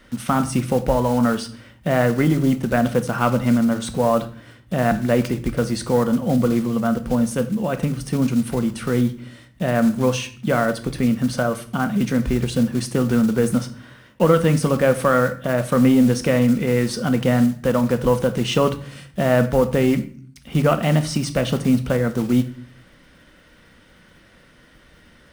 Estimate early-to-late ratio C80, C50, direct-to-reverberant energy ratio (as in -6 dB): 18.0 dB, 14.0 dB, 9.0 dB